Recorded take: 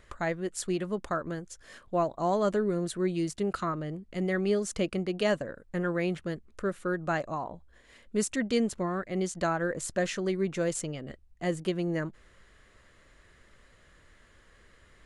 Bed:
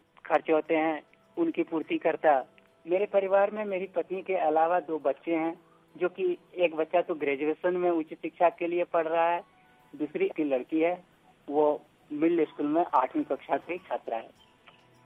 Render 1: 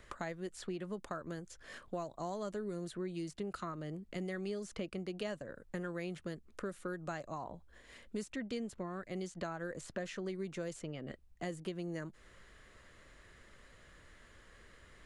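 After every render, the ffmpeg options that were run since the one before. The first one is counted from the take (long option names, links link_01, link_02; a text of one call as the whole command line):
ffmpeg -i in.wav -filter_complex "[0:a]acrossover=split=130|4200[link_01][link_02][link_03];[link_01]acompressor=threshold=-57dB:ratio=4[link_04];[link_02]acompressor=threshold=-40dB:ratio=4[link_05];[link_03]acompressor=threshold=-58dB:ratio=4[link_06];[link_04][link_05][link_06]amix=inputs=3:normalize=0" out.wav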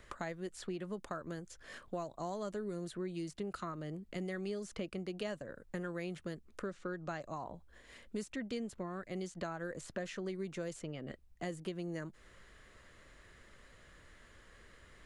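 ffmpeg -i in.wav -filter_complex "[0:a]asettb=1/sr,asplit=3[link_01][link_02][link_03];[link_01]atrim=end=6.664[link_04];[link_02]atrim=start=6.66:end=7.21,asetpts=PTS-STARTPTS,afade=type=in:duration=0.004:curve=qsin,afade=type=out:start_time=0.546:duration=0.004:curve=qsin,lowpass=frequency=6500:width=0.5412,lowpass=frequency=6500:width=1.3066[link_05];[link_03]atrim=start=7.206[link_06];[link_04][link_05]acrossfade=duration=0.004:curve1=hsin:curve2=qsin[link_07];[link_07][link_06]acrossfade=duration=0.004:curve1=qsin:curve2=hsin" out.wav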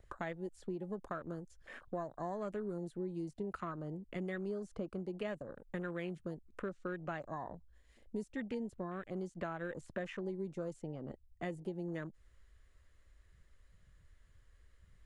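ffmpeg -i in.wav -af "afwtdn=0.00316,highshelf=frequency=5700:gain=7" out.wav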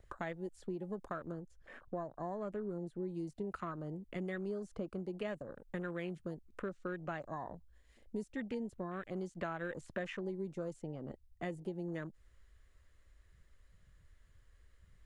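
ffmpeg -i in.wav -filter_complex "[0:a]asettb=1/sr,asplit=3[link_01][link_02][link_03];[link_01]atrim=end=1.324[link_04];[link_02]atrim=start=1.32:end=3.03,asetpts=PTS-STARTPTS,afade=type=in:duration=0.004:curve=qsin,afade=type=out:start_time=1.706:duration=0.004:curve=qsin,highshelf=frequency=2200:gain=-8.5[link_05];[link_03]atrim=start=3.026[link_06];[link_04][link_05]acrossfade=duration=0.004:curve1=hsin:curve2=qsin[link_07];[link_07][link_06]acrossfade=duration=0.004:curve1=qsin:curve2=hsin,asettb=1/sr,asplit=3[link_08][link_09][link_10];[link_08]atrim=end=8.934[link_11];[link_09]atrim=start=8.93:end=10.16,asetpts=PTS-STARTPTS,afade=type=in:duration=0.004:curve=qsin,afade=type=out:start_time=1.226:duration=0.004:curve=qsin,equalizer=frequency=3000:width=0.41:gain=3[link_12];[link_10]atrim=start=10.156[link_13];[link_11][link_12]acrossfade=duration=0.004:curve1=hsin:curve2=qsin[link_14];[link_14][link_13]acrossfade=duration=0.004:curve1=qsin:curve2=hsin" out.wav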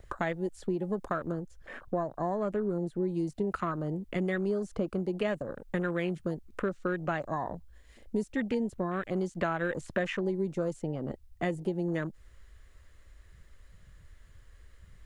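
ffmpeg -i in.wav -af "volume=9.5dB" out.wav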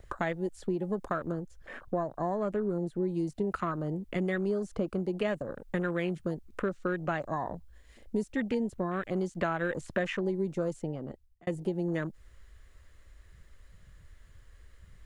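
ffmpeg -i in.wav -filter_complex "[0:a]asplit=2[link_01][link_02];[link_01]atrim=end=11.47,asetpts=PTS-STARTPTS,afade=type=out:start_time=10.8:duration=0.67[link_03];[link_02]atrim=start=11.47,asetpts=PTS-STARTPTS,afade=type=in:duration=0.004:curve=hsin[link_04];[link_03][link_04]concat=n=2:v=0:a=1" out.wav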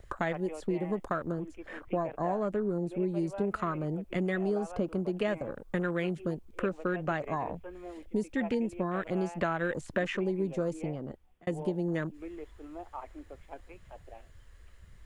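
ffmpeg -i in.wav -i bed.wav -filter_complex "[1:a]volume=-18dB[link_01];[0:a][link_01]amix=inputs=2:normalize=0" out.wav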